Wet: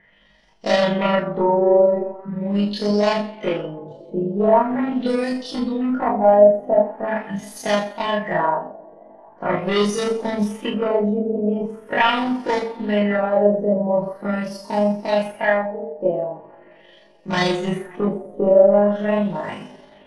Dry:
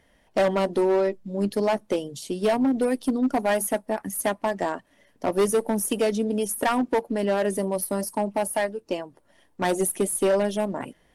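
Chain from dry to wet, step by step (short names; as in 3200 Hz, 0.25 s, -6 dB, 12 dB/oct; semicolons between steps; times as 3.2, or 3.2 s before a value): two-slope reverb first 0.23 s, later 2.3 s, from -28 dB, DRR -5 dB; granular stretch 1.8×, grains 88 ms; LFO low-pass sine 0.42 Hz 590–5500 Hz; gain -1 dB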